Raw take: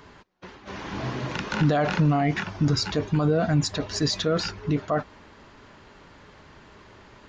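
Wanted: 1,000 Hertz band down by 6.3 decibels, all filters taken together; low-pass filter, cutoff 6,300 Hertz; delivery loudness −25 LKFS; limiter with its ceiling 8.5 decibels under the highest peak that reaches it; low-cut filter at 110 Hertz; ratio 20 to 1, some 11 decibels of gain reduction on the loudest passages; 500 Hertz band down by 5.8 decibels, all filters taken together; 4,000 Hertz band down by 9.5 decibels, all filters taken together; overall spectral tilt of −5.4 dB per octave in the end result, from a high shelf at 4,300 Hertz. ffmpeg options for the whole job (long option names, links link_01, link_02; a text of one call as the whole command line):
ffmpeg -i in.wav -af "highpass=110,lowpass=6300,equalizer=frequency=500:width_type=o:gain=-5,equalizer=frequency=1000:width_type=o:gain=-6.5,equalizer=frequency=4000:width_type=o:gain=-5.5,highshelf=frequency=4300:gain=-8,acompressor=threshold=-29dB:ratio=20,volume=13dB,alimiter=limit=-15dB:level=0:latency=1" out.wav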